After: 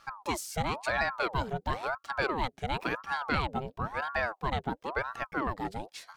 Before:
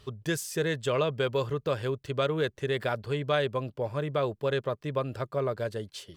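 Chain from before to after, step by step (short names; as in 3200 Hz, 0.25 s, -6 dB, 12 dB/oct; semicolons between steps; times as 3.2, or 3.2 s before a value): ring modulator with a swept carrier 770 Hz, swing 65%, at 0.97 Hz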